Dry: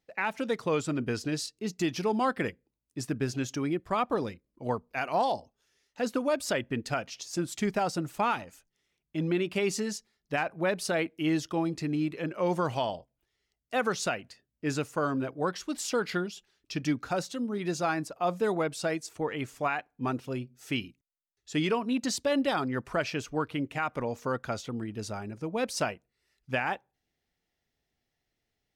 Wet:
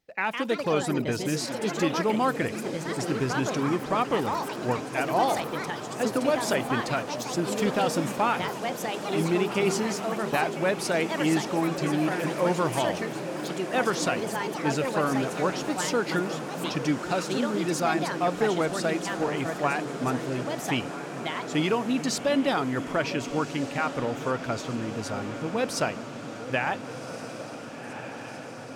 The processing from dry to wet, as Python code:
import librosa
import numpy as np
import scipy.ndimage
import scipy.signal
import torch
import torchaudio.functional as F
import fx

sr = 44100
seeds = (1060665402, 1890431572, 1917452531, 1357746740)

y = fx.echo_diffused(x, sr, ms=1484, feedback_pct=73, wet_db=-11.5)
y = fx.echo_pitch(y, sr, ms=195, semitones=4, count=3, db_per_echo=-6.0)
y = fx.echo_stepped(y, sr, ms=427, hz=180.0, octaves=1.4, feedback_pct=70, wet_db=-9.0)
y = y * librosa.db_to_amplitude(2.5)